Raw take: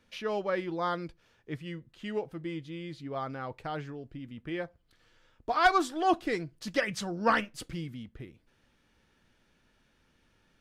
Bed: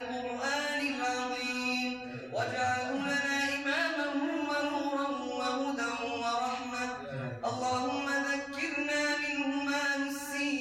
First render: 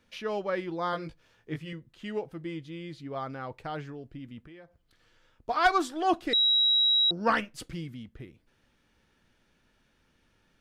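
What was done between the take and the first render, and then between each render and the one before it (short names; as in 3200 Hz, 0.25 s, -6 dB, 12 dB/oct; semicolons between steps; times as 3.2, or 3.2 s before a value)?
0.91–1.73 doubler 19 ms -3 dB; 4.46–5.49 compressor 4:1, threshold -49 dBFS; 6.33–7.11 bleep 3860 Hz -20 dBFS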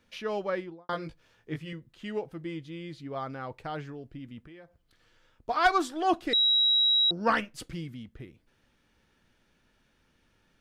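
0.49–0.89 studio fade out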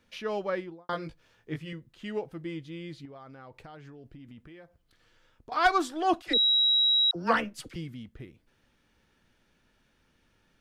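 3.05–5.52 compressor 12:1, threshold -43 dBFS; 6.22–7.76 dispersion lows, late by 48 ms, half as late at 720 Hz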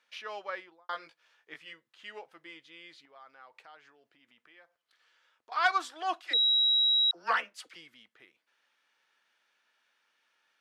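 HPF 970 Hz 12 dB/oct; high shelf 8000 Hz -10.5 dB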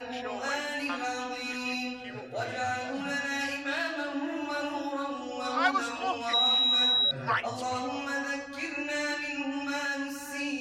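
add bed -1 dB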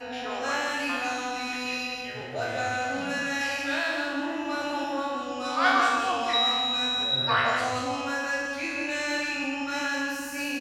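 spectral trails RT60 1.06 s; on a send: echo 0.174 s -5 dB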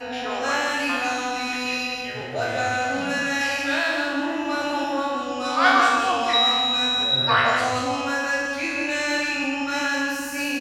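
gain +5 dB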